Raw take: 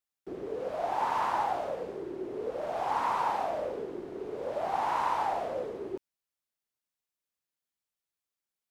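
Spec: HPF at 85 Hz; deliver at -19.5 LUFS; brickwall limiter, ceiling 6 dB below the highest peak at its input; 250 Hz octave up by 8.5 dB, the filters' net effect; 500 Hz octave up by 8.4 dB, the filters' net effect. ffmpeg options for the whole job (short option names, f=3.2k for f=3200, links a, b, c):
-af "highpass=85,equalizer=f=250:t=o:g=8,equalizer=f=500:t=o:g=8.5,volume=10dB,alimiter=limit=-10.5dB:level=0:latency=1"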